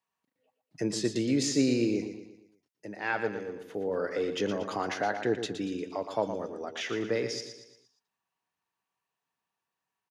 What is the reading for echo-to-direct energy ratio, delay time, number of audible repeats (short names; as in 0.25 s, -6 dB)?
-8.0 dB, 0.117 s, 4